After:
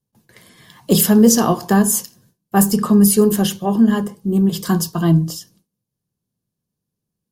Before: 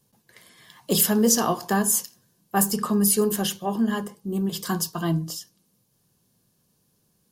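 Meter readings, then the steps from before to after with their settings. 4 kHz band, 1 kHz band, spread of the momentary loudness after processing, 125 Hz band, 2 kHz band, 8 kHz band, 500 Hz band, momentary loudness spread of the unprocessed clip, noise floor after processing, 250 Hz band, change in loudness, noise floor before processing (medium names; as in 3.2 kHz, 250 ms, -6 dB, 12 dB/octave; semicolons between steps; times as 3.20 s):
+3.5 dB, +5.0 dB, 9 LU, +11.0 dB, +4.0 dB, +3.5 dB, +7.5 dB, 10 LU, -81 dBFS, +10.5 dB, +7.5 dB, -69 dBFS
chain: gate with hold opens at -51 dBFS; bass shelf 390 Hz +9 dB; trim +3.5 dB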